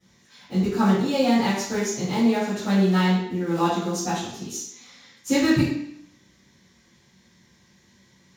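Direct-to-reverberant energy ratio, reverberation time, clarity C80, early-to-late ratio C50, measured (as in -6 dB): -17.0 dB, 0.65 s, 4.5 dB, 0.5 dB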